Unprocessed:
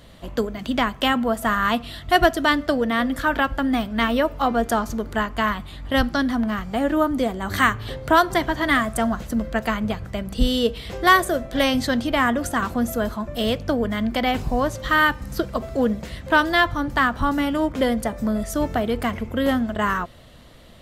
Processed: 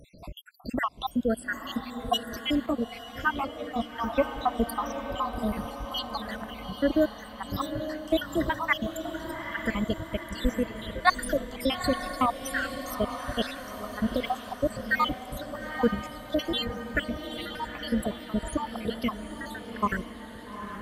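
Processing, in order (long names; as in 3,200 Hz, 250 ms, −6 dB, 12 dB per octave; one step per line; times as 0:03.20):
time-frequency cells dropped at random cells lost 80%
feedback delay with all-pass diffusion 864 ms, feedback 57%, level −8.5 dB
0:02.66–0:04.18: string-ensemble chorus
level −1.5 dB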